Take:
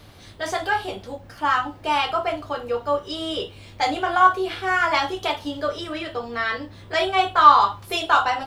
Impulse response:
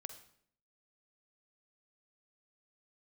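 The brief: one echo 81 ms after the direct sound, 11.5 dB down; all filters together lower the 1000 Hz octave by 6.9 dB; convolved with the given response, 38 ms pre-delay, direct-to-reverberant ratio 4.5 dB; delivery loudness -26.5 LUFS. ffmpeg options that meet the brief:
-filter_complex "[0:a]equalizer=f=1k:t=o:g=-9,aecho=1:1:81:0.266,asplit=2[a][b];[1:a]atrim=start_sample=2205,adelay=38[c];[b][c]afir=irnorm=-1:irlink=0,volume=-0.5dB[d];[a][d]amix=inputs=2:normalize=0,volume=-2dB"

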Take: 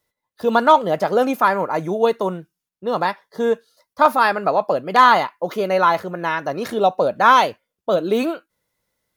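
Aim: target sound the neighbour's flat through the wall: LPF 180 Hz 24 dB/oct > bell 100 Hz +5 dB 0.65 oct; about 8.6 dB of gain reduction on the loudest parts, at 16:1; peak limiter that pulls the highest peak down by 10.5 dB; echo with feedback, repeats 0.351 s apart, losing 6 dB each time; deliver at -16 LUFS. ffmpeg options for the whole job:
-af "acompressor=threshold=-15dB:ratio=16,alimiter=limit=-14dB:level=0:latency=1,lowpass=f=180:w=0.5412,lowpass=f=180:w=1.3066,equalizer=f=100:t=o:w=0.65:g=5,aecho=1:1:351|702|1053|1404|1755|2106:0.501|0.251|0.125|0.0626|0.0313|0.0157,volume=24dB"

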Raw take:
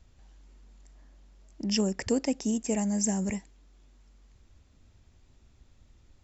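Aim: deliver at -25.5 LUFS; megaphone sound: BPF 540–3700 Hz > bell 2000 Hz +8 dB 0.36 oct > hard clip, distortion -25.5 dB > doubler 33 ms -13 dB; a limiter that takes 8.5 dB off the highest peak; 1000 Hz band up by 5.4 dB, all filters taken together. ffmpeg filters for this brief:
-filter_complex "[0:a]equalizer=f=1k:t=o:g=8,alimiter=limit=-22.5dB:level=0:latency=1,highpass=540,lowpass=3.7k,equalizer=f=2k:t=o:w=0.36:g=8,asoftclip=type=hard:threshold=-24.5dB,asplit=2[a][b];[b]adelay=33,volume=-13dB[c];[a][c]amix=inputs=2:normalize=0,volume=14dB"

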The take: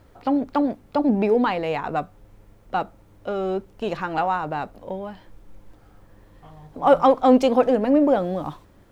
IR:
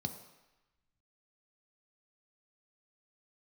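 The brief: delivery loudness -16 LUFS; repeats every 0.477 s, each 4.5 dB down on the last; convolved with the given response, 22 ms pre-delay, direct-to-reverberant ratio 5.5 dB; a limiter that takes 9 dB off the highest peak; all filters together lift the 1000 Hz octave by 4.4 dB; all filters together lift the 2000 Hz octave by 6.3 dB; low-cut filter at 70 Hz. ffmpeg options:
-filter_complex "[0:a]highpass=70,equalizer=f=1k:t=o:g=4.5,equalizer=f=2k:t=o:g=7,alimiter=limit=-10dB:level=0:latency=1,aecho=1:1:477|954|1431|1908|2385|2862|3339|3816|4293:0.596|0.357|0.214|0.129|0.0772|0.0463|0.0278|0.0167|0.01,asplit=2[a][b];[1:a]atrim=start_sample=2205,adelay=22[c];[b][c]afir=irnorm=-1:irlink=0,volume=-5.5dB[d];[a][d]amix=inputs=2:normalize=0,volume=2dB"

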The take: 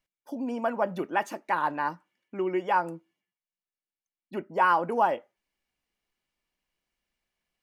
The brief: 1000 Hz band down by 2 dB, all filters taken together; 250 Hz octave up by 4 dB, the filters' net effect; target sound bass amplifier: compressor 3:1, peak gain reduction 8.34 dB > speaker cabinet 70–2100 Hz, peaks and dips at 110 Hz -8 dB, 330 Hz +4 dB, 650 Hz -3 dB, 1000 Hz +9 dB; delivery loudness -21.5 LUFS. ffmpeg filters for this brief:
-af "equalizer=f=250:t=o:g=4,equalizer=f=1k:t=o:g=-8,acompressor=threshold=-33dB:ratio=3,highpass=f=70:w=0.5412,highpass=f=70:w=1.3066,equalizer=f=110:t=q:w=4:g=-8,equalizer=f=330:t=q:w=4:g=4,equalizer=f=650:t=q:w=4:g=-3,equalizer=f=1k:t=q:w=4:g=9,lowpass=f=2.1k:w=0.5412,lowpass=f=2.1k:w=1.3066,volume=13.5dB"

